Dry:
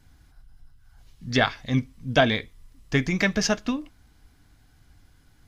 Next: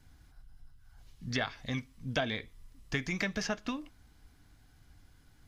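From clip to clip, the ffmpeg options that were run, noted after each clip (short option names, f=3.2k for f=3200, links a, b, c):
-filter_complex "[0:a]acrossover=split=730|2700[a][b][c];[a]acompressor=threshold=-31dB:ratio=4[d];[b]acompressor=threshold=-32dB:ratio=4[e];[c]acompressor=threshold=-37dB:ratio=4[f];[d][e][f]amix=inputs=3:normalize=0,volume=-3.5dB"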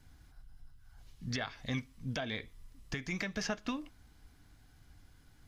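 -af "alimiter=limit=-22.5dB:level=0:latency=1:release=292"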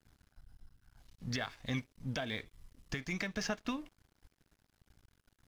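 -af "aeval=exprs='sgn(val(0))*max(abs(val(0))-0.00133,0)':c=same"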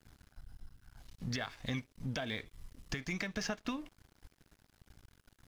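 -af "acompressor=threshold=-45dB:ratio=2,volume=6dB"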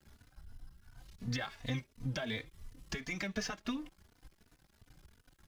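-filter_complex "[0:a]asplit=2[a][b];[b]adelay=3.3,afreqshift=2.8[c];[a][c]amix=inputs=2:normalize=1,volume=3dB"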